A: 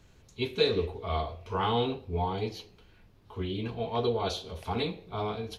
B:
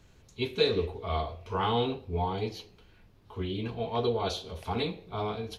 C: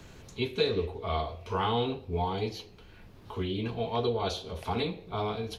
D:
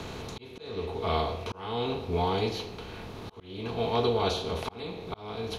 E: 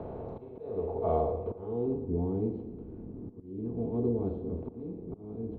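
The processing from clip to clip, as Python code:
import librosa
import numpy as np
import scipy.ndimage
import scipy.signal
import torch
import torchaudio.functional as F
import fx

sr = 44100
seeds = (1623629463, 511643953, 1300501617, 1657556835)

y1 = x
y2 = fx.band_squash(y1, sr, depth_pct=40)
y3 = fx.bin_compress(y2, sr, power=0.6)
y3 = fx.auto_swell(y3, sr, attack_ms=484.0)
y4 = fx.filter_sweep_lowpass(y3, sr, from_hz=630.0, to_hz=300.0, start_s=1.06, end_s=2.11, q=2.2)
y4 = fx.echo_feedback(y4, sr, ms=116, feedback_pct=44, wet_db=-14.5)
y4 = F.gain(torch.from_numpy(y4), -2.5).numpy()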